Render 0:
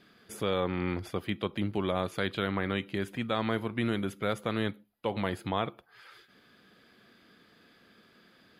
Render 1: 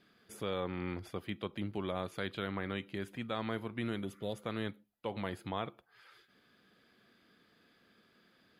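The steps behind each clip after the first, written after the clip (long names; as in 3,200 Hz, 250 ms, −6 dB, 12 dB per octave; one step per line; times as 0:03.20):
healed spectral selection 0:04.07–0:04.35, 1,000–2,500 Hz after
level −7 dB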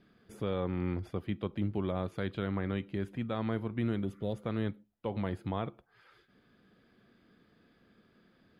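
spectral tilt −2.5 dB per octave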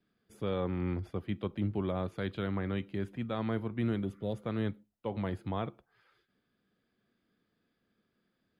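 multiband upward and downward expander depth 40%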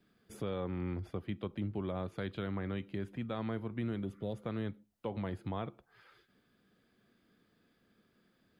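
downward compressor 2 to 1, threshold −49 dBFS, peak gain reduction 12 dB
level +6.5 dB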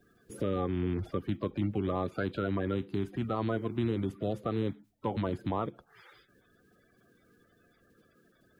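spectral magnitudes quantised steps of 30 dB
level +6.5 dB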